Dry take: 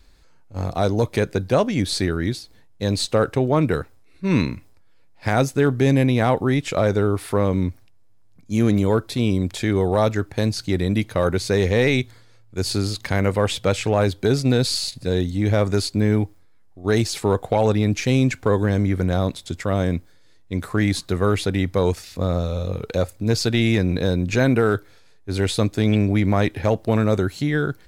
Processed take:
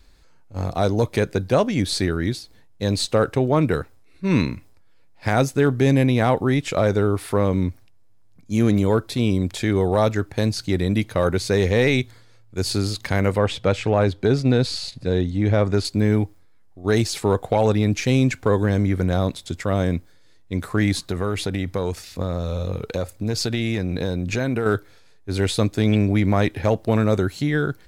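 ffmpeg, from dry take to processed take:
-filter_complex "[0:a]asettb=1/sr,asplit=3[a][b][c];[a]atrim=end=13.384[d];[b]atrim=start=13.38:end=15.85,asetpts=PTS-STARTPTS,afade=t=in:d=0.004:c=qsin,afade=t=out:st=2.466:d=0.004:c=qsin,aemphasis=mode=reproduction:type=50fm[e];[c]atrim=start=15.846[f];[d][e]acrossfade=d=0.004:c1=hsin:c2=qsin[g];[g][f]acrossfade=d=0.004:c1=qsin:c2=hsin,asettb=1/sr,asplit=3[h][i][j];[h]atrim=end=21.014[k];[i]atrim=start=21.01:end=24.66,asetpts=PTS-STARTPTS,afade=t=in:d=0.004:c=qsin,afade=t=out:st=3.646:d=0.004:c=qsin,acompressor=threshold=-19dB:ratio=4:attack=3.2:release=140:knee=1:detection=peak[l];[j]atrim=start=24.656[m];[k][l]acrossfade=d=0.004:c1=hsin:c2=qsin[n];[n][m]acrossfade=d=0.004:c1=qsin:c2=hsin"

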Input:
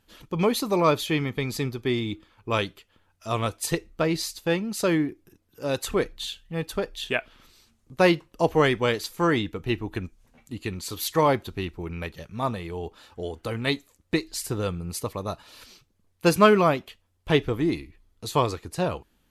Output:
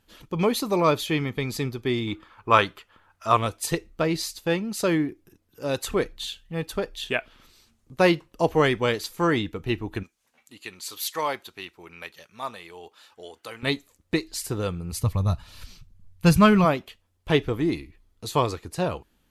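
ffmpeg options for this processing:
-filter_complex "[0:a]asettb=1/sr,asplit=3[a][b][c];[a]atrim=end=2.074[d];[b]atrim=start=2.07:end=3.37,asetpts=PTS-STARTPTS,afade=t=in:d=0.004:c=qsin,afade=t=out:st=1.296:d=0.004:c=qsin,equalizer=f=1.2k:t=o:w=1.7:g=12[e];[c]atrim=start=3.366[f];[d][e]acrossfade=d=0.004:c1=hsin:c2=qsin[g];[g][f]acrossfade=d=0.004:c1=qsin:c2=hsin,asettb=1/sr,asplit=3[h][i][j];[h]atrim=end=10.034[k];[i]atrim=start=10.03:end=13.63,asetpts=PTS-STARTPTS,afade=t=in:d=0.004:c=qsin,afade=t=out:st=3.596:d=0.004:c=qsin,highpass=f=1.3k:p=1[l];[j]atrim=start=13.626[m];[k][l]acrossfade=d=0.004:c1=hsin:c2=qsin[n];[n][m]acrossfade=d=0.004:c1=qsin:c2=hsin,asplit=3[o][p][q];[o]afade=t=out:st=14.92:d=0.02[r];[p]asubboost=boost=11:cutoff=110,afade=t=in:st=14.92:d=0.02,afade=t=out:st=16.64:d=0.02[s];[q]afade=t=in:st=16.64:d=0.02[t];[r][s][t]amix=inputs=3:normalize=0"

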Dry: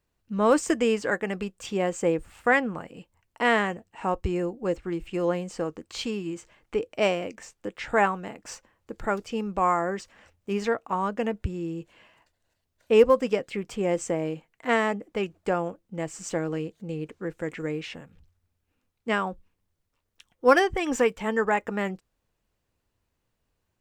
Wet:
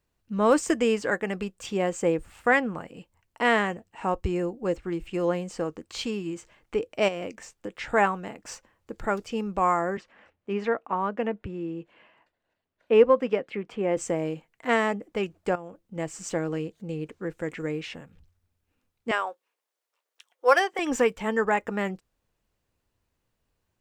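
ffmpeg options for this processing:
-filter_complex "[0:a]asettb=1/sr,asplit=3[a][b][c];[a]atrim=end=7.084[d];[b]atrim=start=7.08:end=7.87,asetpts=PTS-STARTPTS,afade=t=in:d=0.004:c=qsin,afade=t=out:st=0.786:d=0.004:c=qsin,acompressor=threshold=-28dB:ratio=6:attack=3.2:release=140:knee=1:detection=peak[e];[c]atrim=start=7.866[f];[d][e]acrossfade=d=0.004:c1=hsin:c2=qsin[g];[g][f]acrossfade=d=0.004:c1=qsin:c2=hsin,asettb=1/sr,asplit=3[h][i][j];[h]atrim=end=9.974[k];[i]atrim=start=9.97:end=13.97,asetpts=PTS-STARTPTS,afade=t=in:d=0.004:c=qsin,afade=t=out:st=3.996:d=0.004:c=qsin,acrossover=split=160 3400:gain=0.224 1 0.126[l][m][n];[l][m][n]amix=inputs=3:normalize=0[o];[j]atrim=start=13.966[p];[k][o]acrossfade=d=0.004:c1=hsin:c2=qsin[q];[q][p]acrossfade=d=0.004:c1=qsin:c2=hsin,asettb=1/sr,asplit=3[r][s][t];[r]atrim=end=15.554[u];[s]atrim=start=15.55:end=15.96,asetpts=PTS-STARTPTS,afade=t=in:d=0.004:c=qsin,afade=t=out:st=0.406:d=0.004:c=qsin,acompressor=threshold=-36dB:ratio=6:attack=3.2:release=140:knee=1:detection=peak[v];[t]atrim=start=15.956[w];[u][v]acrossfade=d=0.004:c1=hsin:c2=qsin[x];[x][w]acrossfade=d=0.004:c1=qsin:c2=hsin,asettb=1/sr,asplit=3[y][z][aa];[y]atrim=end=19.114[ab];[z]atrim=start=19.11:end=20.79,asetpts=PTS-STARTPTS,afade=t=in:d=0.004:c=qsin,afade=t=out:st=1.676:d=0.004:c=qsin,highpass=f=460:w=0.5412,highpass=f=460:w=1.3066[ac];[aa]atrim=start=20.786[ad];[ab][ac]acrossfade=d=0.004:c1=hsin:c2=qsin[ae];[ae][ad]acrossfade=d=0.004:c1=qsin:c2=hsin"

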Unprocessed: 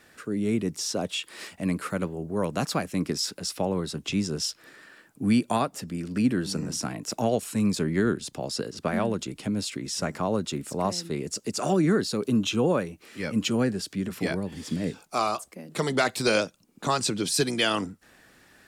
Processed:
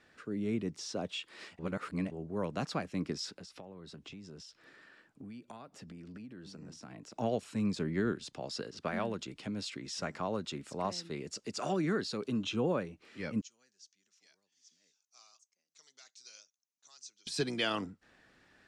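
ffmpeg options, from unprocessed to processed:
-filter_complex "[0:a]asettb=1/sr,asplit=3[a][b][c];[a]atrim=end=3.304[d];[b]atrim=start=3.3:end=7.16,asetpts=PTS-STARTPTS,afade=t=in:d=0.004:c=qsin,afade=t=out:st=3.856:d=0.004:c=qsin,acompressor=threshold=-36dB:ratio=12:attack=3.2:release=140:knee=1:detection=peak[e];[c]atrim=start=7.156[f];[d][e]acrossfade=d=0.004:c1=hsin:c2=qsin[g];[g][f]acrossfade=d=0.004:c1=qsin:c2=hsin,asettb=1/sr,asplit=3[h][i][j];[h]atrim=end=8.124[k];[i]atrim=start=8.12:end=12.44,asetpts=PTS-STARTPTS,afade=t=in:d=0.004:c=qsin,afade=t=out:st=4.316:d=0.004:c=qsin,tiltshelf=f=660:g=-3[l];[j]atrim=start=12.436[m];[k][l]acrossfade=d=0.004:c1=hsin:c2=qsin[n];[n][m]acrossfade=d=0.004:c1=qsin:c2=hsin,asettb=1/sr,asplit=3[o][p][q];[o]atrim=end=13.414[r];[p]atrim=start=13.41:end=17.27,asetpts=PTS-STARTPTS,afade=t=in:d=0.004:c=qsin,afade=t=out:st=3.856:d=0.004:c=qsin,bandpass=f=6.2k:t=q:w=7[s];[q]atrim=start=17.266[t];[r][s]acrossfade=d=0.004:c1=hsin:c2=qsin[u];[u][t]acrossfade=d=0.004:c1=qsin:c2=hsin,asplit=3[v][w][x];[v]atrim=end=1.592[y];[w]atrim=start=1.588:end=2.112,asetpts=PTS-STARTPTS,areverse[z];[x]atrim=start=2.108[aa];[y][z]acrossfade=d=0.004:c1=hsin:c2=hsin[ab];[ab][aa]acrossfade=d=0.004:c1=hsin:c2=hsin,lowpass=5.2k,volume=-8dB"

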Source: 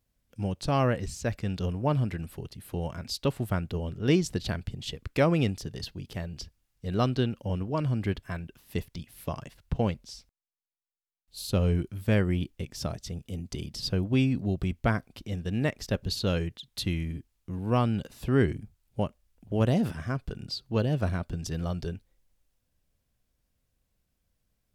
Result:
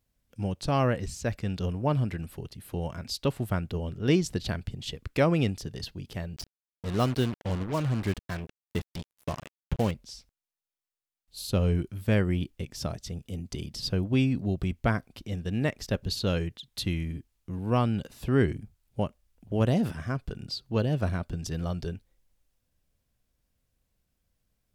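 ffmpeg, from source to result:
-filter_complex "[0:a]asettb=1/sr,asplit=3[a][b][c];[a]atrim=end=6.364[d];[b]atrim=start=6.36:end=9.91,asetpts=PTS-STARTPTS,afade=t=in:d=0.004:c=qsin,afade=t=out:st=3.546:d=0.004:c=qsin,acrusher=bits=5:mix=0:aa=0.5[e];[c]atrim=start=9.906[f];[d][e]acrossfade=d=0.004:c1=hsin:c2=qsin[g];[g][f]acrossfade=d=0.004:c1=qsin:c2=hsin"

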